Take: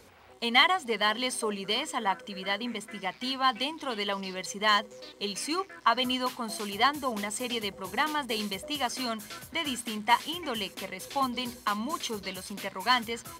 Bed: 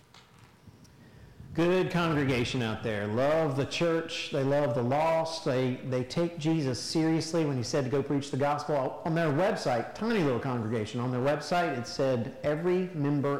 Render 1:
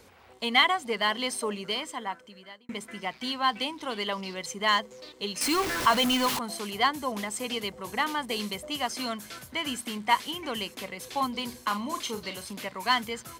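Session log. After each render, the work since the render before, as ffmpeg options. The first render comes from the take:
-filter_complex "[0:a]asettb=1/sr,asplit=3[a][b][c];[a]atrim=end=5.414[d];[b]atrim=start=5.41:end=6.39,asetpts=PTS-STARTPTS,afade=t=in:d=0.004:c=qsin,afade=t=out:st=0.976:d=0.004:c=qsin,aeval=exprs='val(0)+0.5*0.0562*sgn(val(0))':c=same[e];[c]atrim=start=6.386[f];[d][e]acrossfade=d=0.004:c1=hsin:c2=qsin[g];[g][f]acrossfade=d=0.004:c1=qsin:c2=hsin,asettb=1/sr,asplit=3[h][i][j];[h]atrim=end=11.504[k];[i]atrim=start=11.5:end=12.51,asetpts=PTS-STARTPTS,afade=t=in:d=0.004:c=qsin,afade=t=out:st=1.006:d=0.004:c=qsin,asplit=2[l][m];[m]adelay=40,volume=-10dB[n];[l][n]amix=inputs=2:normalize=0,atrim=end_sample=44541[o];[j]atrim=start=12.506[p];[k][o]acrossfade=d=0.004:c1=hsin:c2=qsin[q];[q][p]acrossfade=d=0.004:c1=qsin:c2=hsin,asplit=2[r][s];[r]atrim=end=2.69,asetpts=PTS-STARTPTS,afade=t=out:st=1.52:d=1.17[t];[s]atrim=start=2.69,asetpts=PTS-STARTPTS,afade=t=in:d=0.004:c=hsin[u];[t][u]concat=n=2:v=0:a=1"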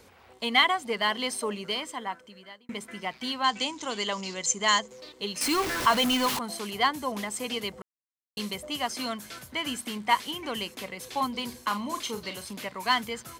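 -filter_complex "[0:a]asettb=1/sr,asplit=3[a][b][c];[a]atrim=end=3.444[d];[b]atrim=start=3.44:end=4.88,asetpts=PTS-STARTPTS,afade=t=in:d=0.004:c=qsin,afade=t=out:st=1.436:d=0.004:c=qsin,lowpass=f=7k:t=q:w=8.2[e];[c]atrim=start=4.876[f];[d][e]acrossfade=d=0.004:c1=hsin:c2=qsin[g];[g][f]acrossfade=d=0.004:c1=qsin:c2=hsin,asplit=3[h][i][j];[h]atrim=end=7.82,asetpts=PTS-STARTPTS,afade=t=out:st=7.816:d=0.004:c=hsin[k];[i]atrim=start=7.82:end=8.37,asetpts=PTS-STARTPTS,volume=0[l];[j]atrim=start=8.37,asetpts=PTS-STARTPTS,afade=t=in:d=0.004:c=hsin[m];[k][l][m]concat=n=3:v=0:a=1"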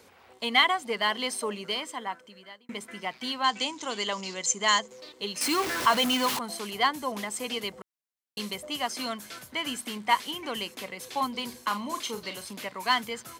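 -af "highpass=52,lowshelf=f=120:g=-9"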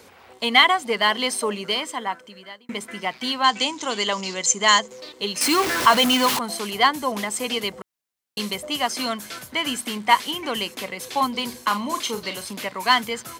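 -af "volume=7dB,alimiter=limit=-1dB:level=0:latency=1"

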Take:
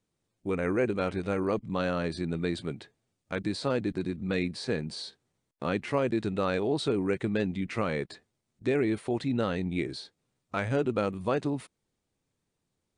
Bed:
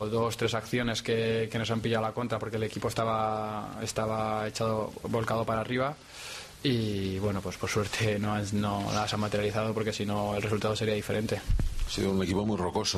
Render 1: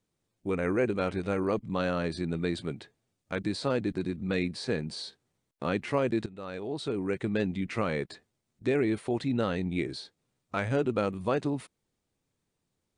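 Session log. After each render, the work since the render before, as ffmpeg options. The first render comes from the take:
-filter_complex "[0:a]asplit=2[a][b];[a]atrim=end=6.26,asetpts=PTS-STARTPTS,afade=t=out:st=6.256:d=0.004:c=hsin:silence=0.125893[c];[b]atrim=start=6.26,asetpts=PTS-STARTPTS,afade=t=in:d=1.15:silence=0.125893[d];[c][d]concat=n=2:v=0:a=1"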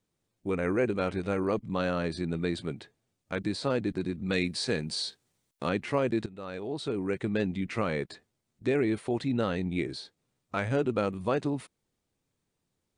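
-filter_complex "[0:a]asettb=1/sr,asplit=3[a][b][c];[a]atrim=end=4.264[d];[b]atrim=start=4.26:end=5.69,asetpts=PTS-STARTPTS,afade=t=in:d=0.004:c=qsin,afade=t=out:st=1.426:d=0.004:c=qsin,highshelf=f=2.7k:g=8.5[e];[c]atrim=start=5.686[f];[d][e]acrossfade=d=0.004:c1=hsin:c2=qsin[g];[g][f]acrossfade=d=0.004:c1=qsin:c2=hsin"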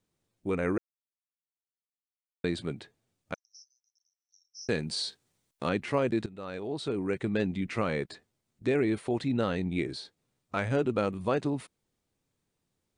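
-filter_complex "[0:a]asettb=1/sr,asplit=3[a][b][c];[a]atrim=end=3.344[d];[b]atrim=start=3.34:end=4.69,asetpts=PTS-STARTPTS,afade=t=in:d=0.004:c=qsin,afade=t=out:st=1.346:d=0.004:c=qsin,asuperpass=centerf=5700:order=8:qfactor=6.2[e];[c]atrim=start=4.686[f];[d][e]acrossfade=d=0.004:c1=hsin:c2=qsin[g];[g][f]acrossfade=d=0.004:c1=qsin:c2=hsin,asplit=3[h][i][j];[h]atrim=end=0.78,asetpts=PTS-STARTPTS,afade=t=out:st=0.776:d=0.004:c=hsin[k];[i]atrim=start=0.78:end=2.44,asetpts=PTS-STARTPTS,volume=0[l];[j]atrim=start=2.44,asetpts=PTS-STARTPTS,afade=t=in:d=0.004:c=hsin[m];[k][l][m]concat=n=3:v=0:a=1"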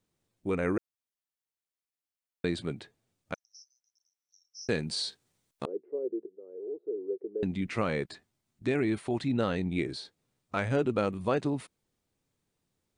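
-filter_complex "[0:a]asettb=1/sr,asplit=3[a][b][c];[a]atrim=end=5.654[d];[b]atrim=start=5.65:end=7.43,asetpts=PTS-STARTPTS,afade=t=in:d=0.004:c=qsin,afade=t=out:st=1.776:d=0.004:c=qsin,asuperpass=centerf=410:order=4:qfactor=3.3[e];[c]atrim=start=7.426[f];[d][e]acrossfade=d=0.004:c1=hsin:c2=qsin[g];[g][f]acrossfade=d=0.004:c1=qsin:c2=hsin,asettb=1/sr,asplit=3[h][i][j];[h]atrim=end=8.054[k];[i]atrim=start=8.05:end=9.29,asetpts=PTS-STARTPTS,afade=t=in:d=0.004:c=qsin,afade=t=out:st=1.236:d=0.004:c=qsin,equalizer=f=480:t=o:w=0.34:g=-8[l];[j]atrim=start=9.286[m];[k][l]acrossfade=d=0.004:c1=hsin:c2=qsin[n];[n][m]acrossfade=d=0.004:c1=qsin:c2=hsin"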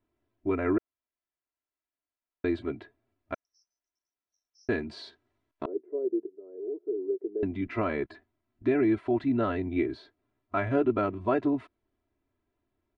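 -af "lowpass=1.9k,aecho=1:1:3:0.97"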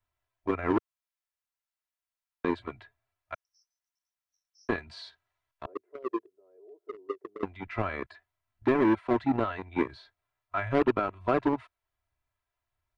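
-filter_complex "[0:a]acrossover=split=140|650[a][b][c];[a]tremolo=f=1.4:d=0.62[d];[b]acrusher=bits=3:mix=0:aa=0.5[e];[d][e][c]amix=inputs=3:normalize=0"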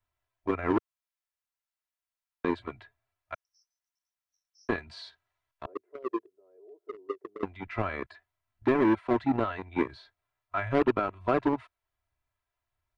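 -af anull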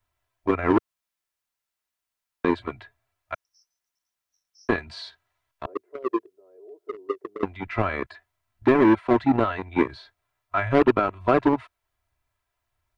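-af "volume=6.5dB"

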